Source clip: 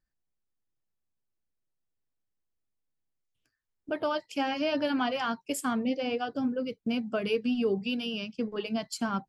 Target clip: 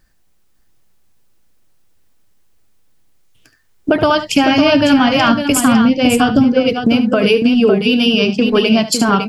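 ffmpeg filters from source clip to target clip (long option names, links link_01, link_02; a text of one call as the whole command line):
ffmpeg -i in.wav -filter_complex "[0:a]asplit=3[link_01][link_02][link_03];[link_01]afade=type=out:start_time=3.92:duration=0.02[link_04];[link_02]asubboost=boost=8:cutoff=150,afade=type=in:start_time=3.92:duration=0.02,afade=type=out:start_time=6.43:duration=0.02[link_05];[link_03]afade=type=in:start_time=6.43:duration=0.02[link_06];[link_04][link_05][link_06]amix=inputs=3:normalize=0,acompressor=threshold=-34dB:ratio=10,aecho=1:1:72|554:0.237|0.422,alimiter=level_in=26.5dB:limit=-1dB:release=50:level=0:latency=1,volume=-1dB" out.wav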